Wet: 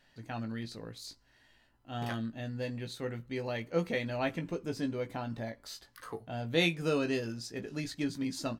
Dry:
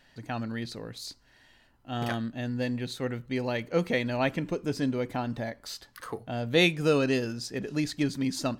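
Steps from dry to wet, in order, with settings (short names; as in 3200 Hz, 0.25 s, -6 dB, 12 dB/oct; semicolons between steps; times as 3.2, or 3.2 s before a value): doubler 18 ms -6.5 dB; gain -6.5 dB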